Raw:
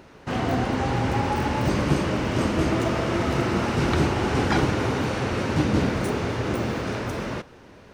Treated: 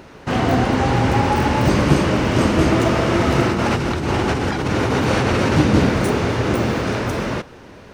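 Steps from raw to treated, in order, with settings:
0:03.47–0:05.56: compressor whose output falls as the input rises −26 dBFS, ratio −1
level +7 dB

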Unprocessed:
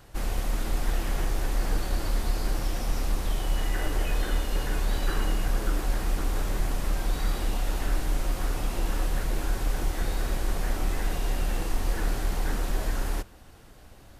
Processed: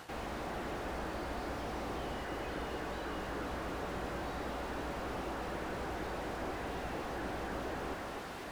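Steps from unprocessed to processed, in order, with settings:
high-pass filter 540 Hz 6 dB per octave
high-shelf EQ 6,100 Hz −9.5 dB
reversed playback
downward compressor 6 to 1, threshold −47 dBFS, peak gain reduction 14 dB
reversed playback
time stretch by overlap-add 0.6×, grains 28 ms
on a send: delay that swaps between a low-pass and a high-pass 251 ms, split 2,200 Hz, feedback 79%, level −6 dB
on the sum: slew-rate limiting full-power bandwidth 2.9 Hz
level +12.5 dB

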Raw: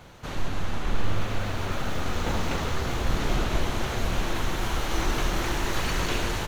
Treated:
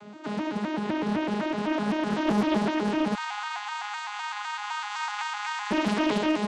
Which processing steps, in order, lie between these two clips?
vocoder with an arpeggio as carrier bare fifth, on G#3, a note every 127 ms
0:03.15–0:05.71: linear-phase brick-wall high-pass 700 Hz
highs frequency-modulated by the lows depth 0.65 ms
level +6.5 dB

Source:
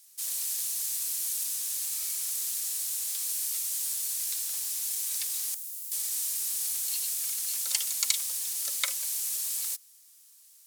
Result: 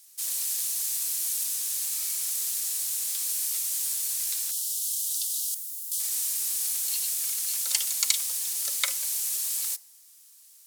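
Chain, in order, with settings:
0:04.51–0:06.00: Butterworth high-pass 2,900 Hz 72 dB per octave
feedback delay network reverb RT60 0.88 s, low-frequency decay 1.25×, high-frequency decay 0.55×, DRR 17.5 dB
level +2.5 dB

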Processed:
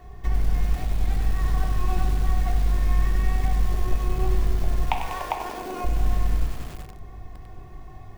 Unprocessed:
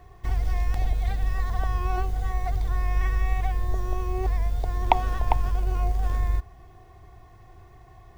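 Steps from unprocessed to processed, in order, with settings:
sub-octave generator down 2 octaves, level +2 dB
0:04.85–0:05.84: high-pass filter 540 Hz → 250 Hz 24 dB per octave
downward compressor 5 to 1, threshold −25 dBFS, peak gain reduction 12 dB
0:01.97–0:03.10: double-tracking delay 38 ms −13 dB
convolution reverb RT60 1.3 s, pre-delay 5 ms, DRR 2.5 dB
feedback echo at a low word length 97 ms, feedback 80%, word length 6 bits, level −9.5 dB
level +2 dB

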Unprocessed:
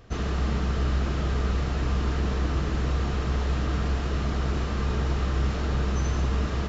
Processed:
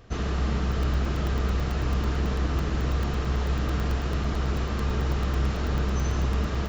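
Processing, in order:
regular buffer underruns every 0.11 s, samples 128, zero, from 0:00.72

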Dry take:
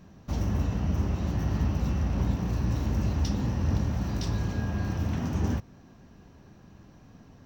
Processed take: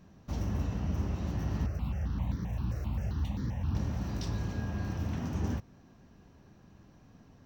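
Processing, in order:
0:01.66–0:03.75: step-sequenced phaser 7.6 Hz 920–2,700 Hz
level −5 dB

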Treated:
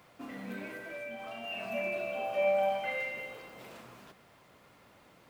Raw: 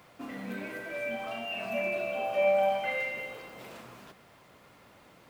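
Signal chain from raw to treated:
0:00.71–0:01.44: downward compressor 4 to 1, threshold −36 dBFS, peak gain reduction 5 dB
level −3 dB

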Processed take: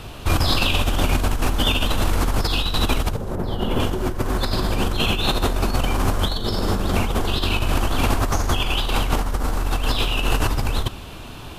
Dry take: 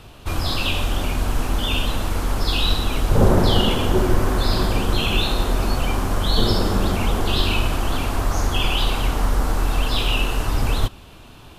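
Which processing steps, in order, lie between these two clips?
0:03.35–0:03.80: parametric band 5,900 Hz −10.5 dB 2.8 octaves
compressor whose output falls as the input rises −23 dBFS, ratio −1
level +3 dB

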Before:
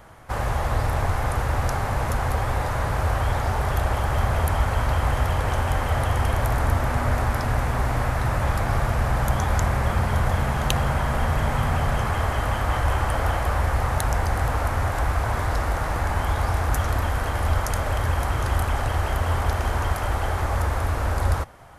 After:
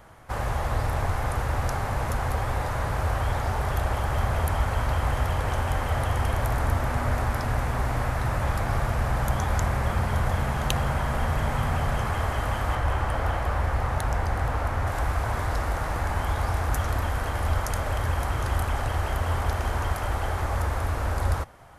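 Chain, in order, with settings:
0:12.75–0:14.87: high-shelf EQ 5,300 Hz −7.5 dB
level −3 dB

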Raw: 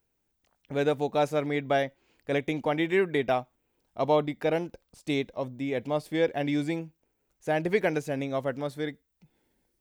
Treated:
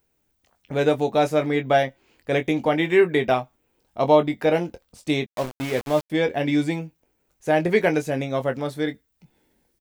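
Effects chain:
on a send: ambience of single reflections 13 ms −12.5 dB, 23 ms −9.5 dB
0:05.26–0:06.10: on the sum: centre clipping without the shift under −34.5 dBFS
level +5.5 dB

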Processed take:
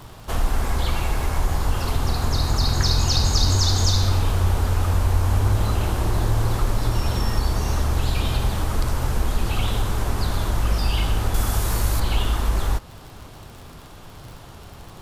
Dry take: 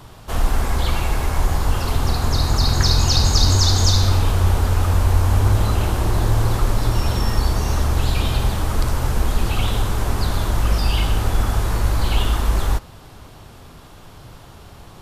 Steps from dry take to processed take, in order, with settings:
surface crackle 62 per second −34 dBFS
0:11.34–0:12.00: high-shelf EQ 5,300 Hz +11.5 dB
in parallel at −0.5 dB: downward compressor, threshold −23 dBFS, peak gain reduction 13.5 dB
on the sum: level −5.5 dB

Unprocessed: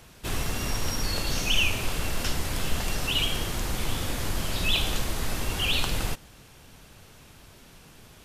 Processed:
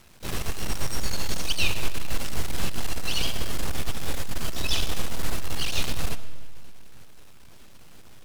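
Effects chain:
half-wave rectification
pitch-shifted copies added +7 semitones −4 dB
comb and all-pass reverb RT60 1.7 s, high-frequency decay 0.8×, pre-delay 35 ms, DRR 13 dB

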